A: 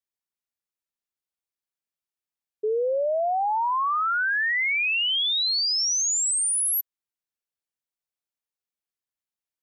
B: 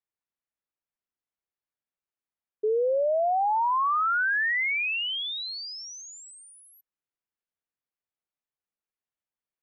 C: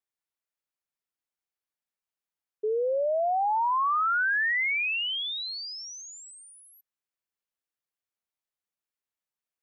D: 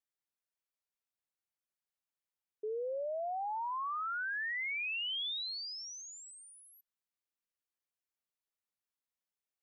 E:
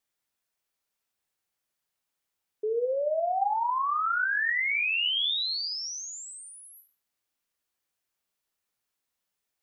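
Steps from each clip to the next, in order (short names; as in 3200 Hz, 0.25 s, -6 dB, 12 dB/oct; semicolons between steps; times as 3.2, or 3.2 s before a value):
LPF 2300 Hz 12 dB/oct
low shelf 470 Hz -5 dB
limiter -29 dBFS, peak gain reduction 7 dB; gain -5 dB
reverb RT60 0.35 s, pre-delay 26 ms, DRR 6.5 dB; gain +9 dB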